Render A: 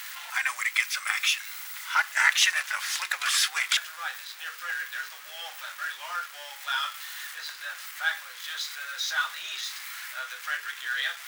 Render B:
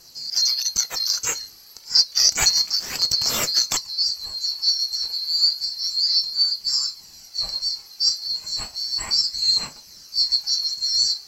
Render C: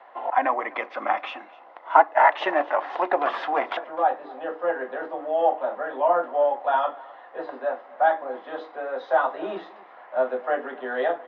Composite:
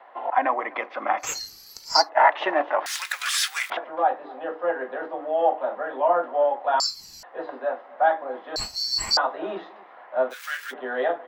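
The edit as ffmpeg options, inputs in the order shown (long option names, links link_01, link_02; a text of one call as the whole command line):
ffmpeg -i take0.wav -i take1.wav -i take2.wav -filter_complex "[1:a]asplit=3[link_01][link_02][link_03];[0:a]asplit=2[link_04][link_05];[2:a]asplit=6[link_06][link_07][link_08][link_09][link_10][link_11];[link_06]atrim=end=1.42[link_12];[link_01]atrim=start=1.18:end=2.1[link_13];[link_07]atrim=start=1.86:end=2.862[link_14];[link_04]atrim=start=2.858:end=3.702[link_15];[link_08]atrim=start=3.698:end=6.802[link_16];[link_02]atrim=start=6.798:end=7.232[link_17];[link_09]atrim=start=7.228:end=8.562[link_18];[link_03]atrim=start=8.558:end=9.172[link_19];[link_10]atrim=start=9.168:end=10.34[link_20];[link_05]atrim=start=10.3:end=10.74[link_21];[link_11]atrim=start=10.7[link_22];[link_12][link_13]acrossfade=duration=0.24:curve1=tri:curve2=tri[link_23];[link_23][link_14]acrossfade=duration=0.24:curve1=tri:curve2=tri[link_24];[link_24][link_15]acrossfade=duration=0.004:curve1=hsin:curve2=hsin[link_25];[link_25][link_16]acrossfade=duration=0.004:curve1=hsin:curve2=hsin[link_26];[link_26][link_17]acrossfade=duration=0.004:curve1=hsin:curve2=hsin[link_27];[link_27][link_18]acrossfade=duration=0.004:curve1=hsin:curve2=hsin[link_28];[link_28][link_19]acrossfade=duration=0.004:curve1=hsin:curve2=hsin[link_29];[link_29][link_20]acrossfade=duration=0.004:curve1=hsin:curve2=hsin[link_30];[link_30][link_21]acrossfade=duration=0.04:curve1=tri:curve2=tri[link_31];[link_31][link_22]acrossfade=duration=0.04:curve1=tri:curve2=tri" out.wav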